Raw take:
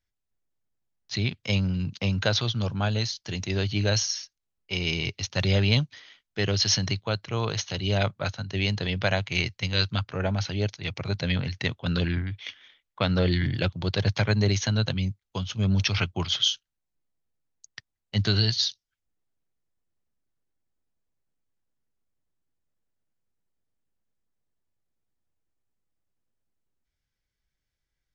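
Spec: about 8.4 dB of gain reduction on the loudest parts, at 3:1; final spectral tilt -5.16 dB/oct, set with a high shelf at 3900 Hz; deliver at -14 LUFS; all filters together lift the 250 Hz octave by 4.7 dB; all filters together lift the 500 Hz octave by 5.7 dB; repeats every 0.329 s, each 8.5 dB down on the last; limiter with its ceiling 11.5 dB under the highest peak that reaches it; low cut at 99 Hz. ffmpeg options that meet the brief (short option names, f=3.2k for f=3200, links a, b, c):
-af "highpass=99,equalizer=f=250:t=o:g=6,equalizer=f=500:t=o:g=5.5,highshelf=f=3.9k:g=-8,acompressor=threshold=-28dB:ratio=3,alimiter=limit=-24dB:level=0:latency=1,aecho=1:1:329|658|987|1316:0.376|0.143|0.0543|0.0206,volume=20dB"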